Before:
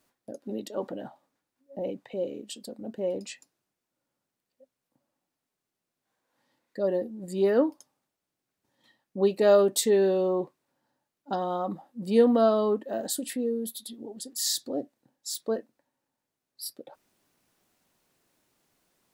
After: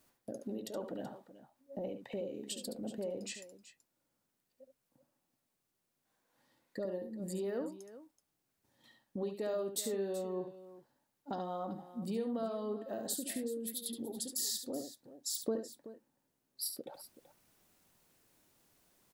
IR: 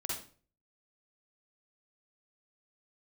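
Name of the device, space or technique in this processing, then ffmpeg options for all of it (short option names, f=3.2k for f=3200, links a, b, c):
ASMR close-microphone chain: -filter_complex "[0:a]lowshelf=f=130:g=6,acompressor=threshold=-37dB:ratio=4,highshelf=f=8.5k:g=6,asettb=1/sr,asplit=3[a][b][c];[a]atrim=end=15.454[d];[b]atrim=start=15.45:end=16.65,asetpts=PTS-STARTPTS,afade=t=in:d=0.004:c=qsin,afade=t=out:st=1.196:d=0.004:c=qsin,equalizer=f=270:w=0.55:g=6[e];[c]atrim=start=16.646[f];[d][e]acrossfade=d=0.004:c1=hsin:c2=qsin[g];[g][f]acrossfade=d=0.004:c1=qsin:c2=hsin,aecho=1:1:71|379:0.398|0.178,volume=-1.5dB"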